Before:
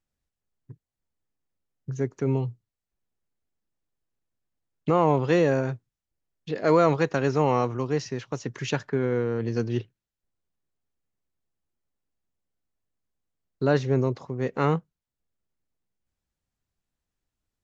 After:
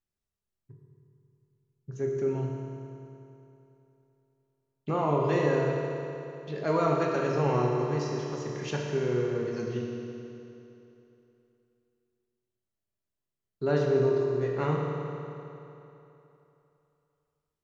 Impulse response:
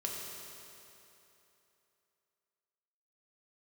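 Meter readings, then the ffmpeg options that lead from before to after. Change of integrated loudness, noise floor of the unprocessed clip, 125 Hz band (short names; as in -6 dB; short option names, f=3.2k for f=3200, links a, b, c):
-3.5 dB, under -85 dBFS, -3.0 dB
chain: -filter_complex "[1:a]atrim=start_sample=2205[a];[0:a][a]afir=irnorm=-1:irlink=0,volume=-6dB"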